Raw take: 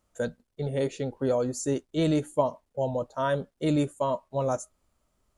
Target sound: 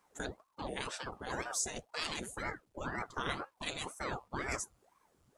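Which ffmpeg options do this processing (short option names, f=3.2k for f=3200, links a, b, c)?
-af "afftfilt=real='re*lt(hypot(re,im),0.112)':imag='im*lt(hypot(re,im),0.112)':win_size=1024:overlap=0.75,aeval=exprs='val(0)*sin(2*PI*580*n/s+580*0.9/2*sin(2*PI*2*n/s))':c=same,volume=4dB"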